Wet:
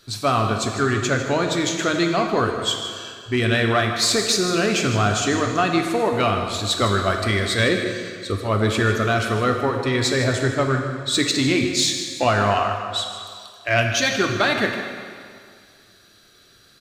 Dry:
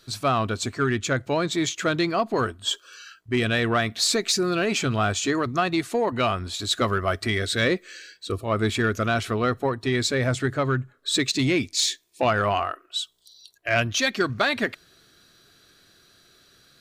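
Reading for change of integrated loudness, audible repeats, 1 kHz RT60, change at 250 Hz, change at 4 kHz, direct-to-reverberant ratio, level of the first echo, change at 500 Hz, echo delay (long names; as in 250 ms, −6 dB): +3.5 dB, 1, 2.2 s, +3.5 dB, +3.5 dB, 3.0 dB, −12.0 dB, +3.5 dB, 154 ms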